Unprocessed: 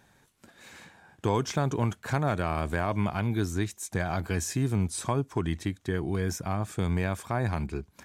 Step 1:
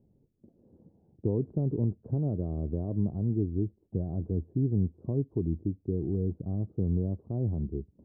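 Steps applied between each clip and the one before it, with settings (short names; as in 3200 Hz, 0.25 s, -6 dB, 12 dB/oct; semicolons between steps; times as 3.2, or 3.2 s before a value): inverse Chebyshev low-pass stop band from 2000 Hz, stop band 70 dB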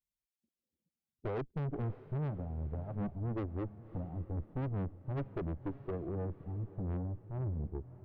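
per-bin expansion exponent 2; tube stage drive 40 dB, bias 0.75; diffused feedback echo 0.6 s, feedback 47%, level -15.5 dB; gain +6.5 dB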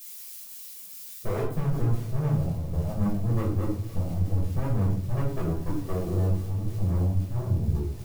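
switching spikes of -40 dBFS; shoebox room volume 590 m³, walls furnished, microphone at 5.8 m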